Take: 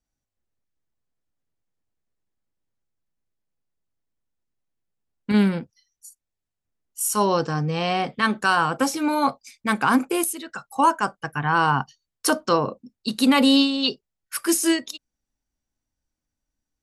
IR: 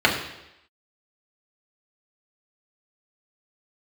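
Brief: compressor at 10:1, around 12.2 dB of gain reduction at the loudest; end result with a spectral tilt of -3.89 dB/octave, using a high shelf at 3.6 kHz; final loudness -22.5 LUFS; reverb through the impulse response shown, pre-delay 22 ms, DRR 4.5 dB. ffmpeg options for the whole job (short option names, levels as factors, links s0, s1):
-filter_complex "[0:a]highshelf=f=3600:g=5,acompressor=threshold=0.0562:ratio=10,asplit=2[s0][s1];[1:a]atrim=start_sample=2205,adelay=22[s2];[s1][s2]afir=irnorm=-1:irlink=0,volume=0.0562[s3];[s0][s3]amix=inputs=2:normalize=0,volume=2.11"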